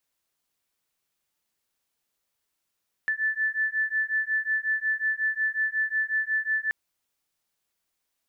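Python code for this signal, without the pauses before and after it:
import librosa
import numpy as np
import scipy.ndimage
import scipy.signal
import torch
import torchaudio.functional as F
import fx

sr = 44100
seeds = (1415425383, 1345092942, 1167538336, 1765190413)

y = fx.two_tone_beats(sr, length_s=3.63, hz=1750.0, beat_hz=5.5, level_db=-27.0)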